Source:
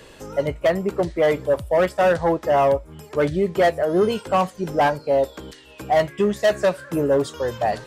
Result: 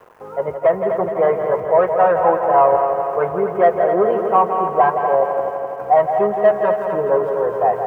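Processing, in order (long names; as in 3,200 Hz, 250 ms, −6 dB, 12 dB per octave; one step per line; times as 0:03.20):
adaptive Wiener filter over 9 samples
Bessel high-pass filter 190 Hz, order 2
high-frequency loss of the air 390 metres
notch comb filter 290 Hz
centre clipping without the shift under −47 dBFS
octave-band graphic EQ 250/500/1,000/4,000/8,000 Hz −5/+4/+12/−10/−3 dB
on a send: echo machine with several playback heads 84 ms, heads second and third, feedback 65%, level −8 dB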